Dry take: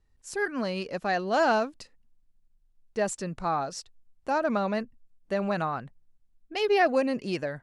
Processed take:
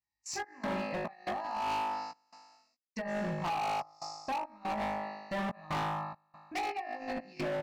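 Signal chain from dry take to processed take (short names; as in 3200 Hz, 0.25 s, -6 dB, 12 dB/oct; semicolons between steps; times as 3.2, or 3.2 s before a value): HPF 130 Hz 12 dB/oct; gate -50 dBFS, range -26 dB; flutter echo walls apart 3.3 m, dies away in 1.1 s; negative-ratio compressor -24 dBFS, ratio -0.5; step gate "xx.xx.xx" 71 bpm -24 dB; treble ducked by the level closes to 1500 Hz, closed at -22.5 dBFS; fixed phaser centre 2200 Hz, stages 8; doubler 17 ms -7 dB; overloaded stage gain 31 dB; mismatched tape noise reduction encoder only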